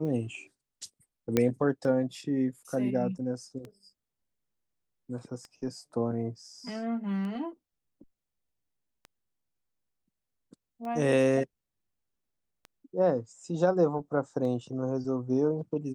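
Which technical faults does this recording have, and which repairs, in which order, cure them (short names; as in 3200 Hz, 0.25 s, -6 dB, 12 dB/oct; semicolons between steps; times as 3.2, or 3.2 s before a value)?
tick 33 1/3 rpm -29 dBFS
1.37 pop -11 dBFS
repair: de-click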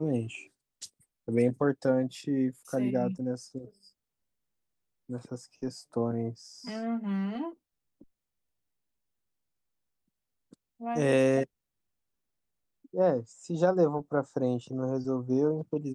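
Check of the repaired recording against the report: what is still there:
none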